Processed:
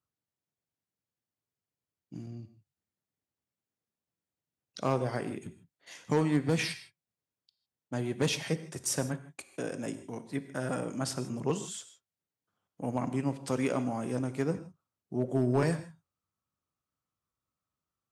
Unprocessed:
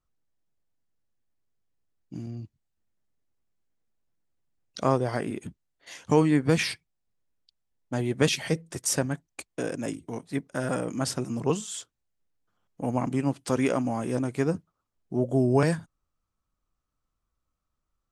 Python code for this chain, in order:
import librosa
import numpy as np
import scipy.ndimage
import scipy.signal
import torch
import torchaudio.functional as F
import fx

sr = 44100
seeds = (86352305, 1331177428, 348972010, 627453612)

y = scipy.signal.sosfilt(scipy.signal.butter(4, 78.0, 'highpass', fs=sr, output='sos'), x)
y = np.clip(y, -10.0 ** (-15.0 / 20.0), 10.0 ** (-15.0 / 20.0))
y = fx.rev_gated(y, sr, seeds[0], gate_ms=180, shape='flat', drr_db=11.0)
y = F.gain(torch.from_numpy(y), -5.0).numpy()